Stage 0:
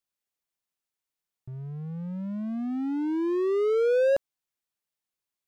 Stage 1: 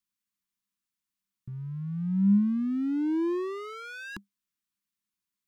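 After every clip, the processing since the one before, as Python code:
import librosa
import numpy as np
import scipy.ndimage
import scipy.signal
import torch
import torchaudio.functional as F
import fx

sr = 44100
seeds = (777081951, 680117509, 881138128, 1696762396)

y = scipy.signal.sosfilt(scipy.signal.cheby1(3, 1.0, [340.0, 1000.0], 'bandstop', fs=sr, output='sos'), x)
y = fx.peak_eq(y, sr, hz=200.0, db=14.5, octaves=0.25)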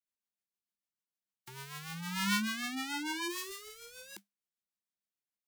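y = fx.envelope_flatten(x, sr, power=0.1)
y = fx.rotary(y, sr, hz=6.7)
y = y * 10.0 ** (-7.5 / 20.0)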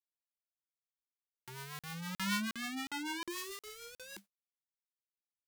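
y = fx.law_mismatch(x, sr, coded='mu')
y = fx.buffer_crackle(y, sr, first_s=0.71, period_s=0.36, block=2048, kind='zero')
y = y * 10.0 ** (-4.5 / 20.0)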